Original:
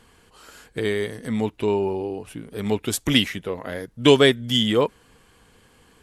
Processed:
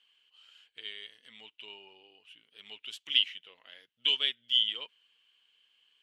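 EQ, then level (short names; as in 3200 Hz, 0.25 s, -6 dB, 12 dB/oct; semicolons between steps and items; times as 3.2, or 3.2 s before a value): band-pass 3000 Hz, Q 7.8; 0.0 dB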